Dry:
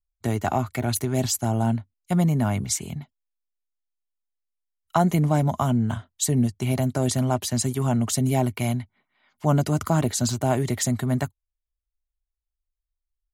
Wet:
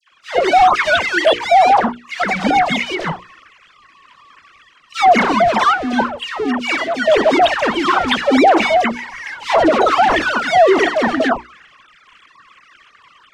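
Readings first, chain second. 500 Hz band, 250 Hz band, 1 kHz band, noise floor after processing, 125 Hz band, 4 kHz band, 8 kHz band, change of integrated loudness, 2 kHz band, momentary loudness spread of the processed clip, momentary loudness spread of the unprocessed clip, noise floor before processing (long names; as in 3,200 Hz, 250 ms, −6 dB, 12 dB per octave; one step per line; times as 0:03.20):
+14.0 dB, +4.5 dB, +17.5 dB, −51 dBFS, −13.0 dB, +13.5 dB, −6.5 dB, +9.5 dB, +21.0 dB, 10 LU, 6 LU, −85 dBFS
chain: three sine waves on the formant tracks
parametric band 290 Hz +7.5 dB 2.4 octaves
automatic gain control
auto-filter high-pass saw up 0.86 Hz 540–1,600 Hz
power curve on the samples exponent 0.35
high-frequency loss of the air 110 metres
mains-hum notches 60/120/180/240/300/360/420/480 Hz
all-pass dispersion lows, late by 119 ms, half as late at 1,300 Hz
boost into a limiter −3.5 dB
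multiband upward and downward expander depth 40%
level −3 dB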